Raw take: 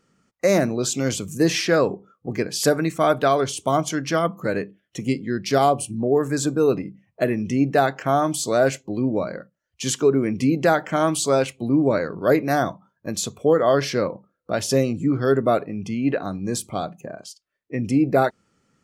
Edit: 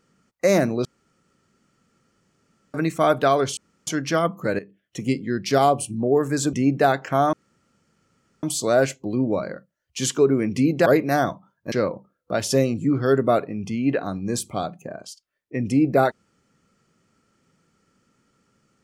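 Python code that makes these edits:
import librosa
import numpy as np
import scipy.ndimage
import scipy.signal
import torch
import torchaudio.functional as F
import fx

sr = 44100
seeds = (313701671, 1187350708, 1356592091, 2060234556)

y = fx.edit(x, sr, fx.room_tone_fill(start_s=0.85, length_s=1.89),
    fx.room_tone_fill(start_s=3.57, length_s=0.3),
    fx.fade_in_from(start_s=4.59, length_s=0.55, curve='qsin', floor_db=-14.5),
    fx.cut(start_s=6.53, length_s=0.94),
    fx.insert_room_tone(at_s=8.27, length_s=1.1),
    fx.cut(start_s=10.7, length_s=1.55),
    fx.cut(start_s=13.11, length_s=0.8), tone=tone)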